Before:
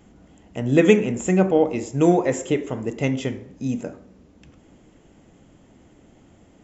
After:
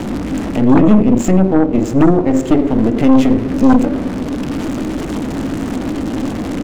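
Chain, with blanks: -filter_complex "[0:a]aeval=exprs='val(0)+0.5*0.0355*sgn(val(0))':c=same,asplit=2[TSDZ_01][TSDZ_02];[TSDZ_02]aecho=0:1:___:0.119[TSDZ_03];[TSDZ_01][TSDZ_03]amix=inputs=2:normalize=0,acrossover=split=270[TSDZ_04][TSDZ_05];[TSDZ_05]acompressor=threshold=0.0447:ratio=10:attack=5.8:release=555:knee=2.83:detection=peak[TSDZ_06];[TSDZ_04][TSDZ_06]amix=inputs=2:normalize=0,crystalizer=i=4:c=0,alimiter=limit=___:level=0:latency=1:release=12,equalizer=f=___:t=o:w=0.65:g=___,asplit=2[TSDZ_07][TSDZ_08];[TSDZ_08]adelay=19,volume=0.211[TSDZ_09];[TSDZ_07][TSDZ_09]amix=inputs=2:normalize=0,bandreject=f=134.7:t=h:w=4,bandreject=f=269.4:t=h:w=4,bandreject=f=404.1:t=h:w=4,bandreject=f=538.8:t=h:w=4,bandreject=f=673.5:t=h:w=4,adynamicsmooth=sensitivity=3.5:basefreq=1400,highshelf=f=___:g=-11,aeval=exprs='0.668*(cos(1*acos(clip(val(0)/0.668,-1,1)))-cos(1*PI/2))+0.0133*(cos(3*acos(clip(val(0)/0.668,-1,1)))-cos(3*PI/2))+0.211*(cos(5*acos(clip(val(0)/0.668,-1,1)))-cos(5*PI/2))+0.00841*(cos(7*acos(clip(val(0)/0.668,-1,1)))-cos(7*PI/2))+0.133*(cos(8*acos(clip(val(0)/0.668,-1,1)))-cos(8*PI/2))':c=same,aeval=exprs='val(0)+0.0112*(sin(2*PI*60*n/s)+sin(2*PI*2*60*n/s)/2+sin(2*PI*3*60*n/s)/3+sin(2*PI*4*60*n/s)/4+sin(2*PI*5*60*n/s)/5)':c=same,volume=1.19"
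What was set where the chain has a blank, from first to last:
81, 0.224, 270, 11, 2500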